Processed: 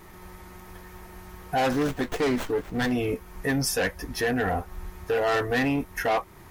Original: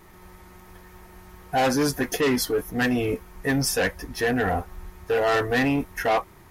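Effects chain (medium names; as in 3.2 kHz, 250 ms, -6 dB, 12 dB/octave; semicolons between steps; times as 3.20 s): in parallel at +3 dB: compression, threshold -33 dBFS, peak gain reduction 13 dB; 1.71–2.92 s: on the sum: sliding maximum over 9 samples; trim -5 dB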